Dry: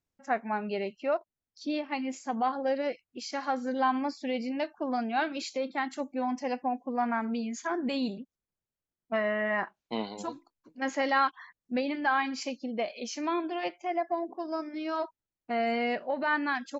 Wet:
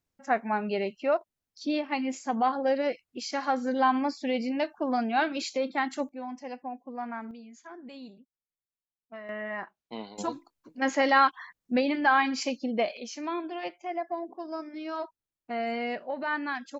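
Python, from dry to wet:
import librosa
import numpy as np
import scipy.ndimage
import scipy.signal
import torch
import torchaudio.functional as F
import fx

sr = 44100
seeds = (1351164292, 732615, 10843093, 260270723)

y = fx.gain(x, sr, db=fx.steps((0.0, 3.0), (6.09, -7.0), (7.31, -14.0), (9.29, -6.0), (10.18, 4.5), (12.97, -2.5)))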